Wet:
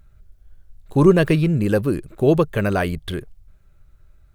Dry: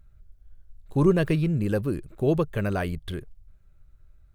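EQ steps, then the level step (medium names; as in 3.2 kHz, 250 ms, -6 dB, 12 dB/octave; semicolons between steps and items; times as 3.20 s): bass shelf 140 Hz -5.5 dB; +8.0 dB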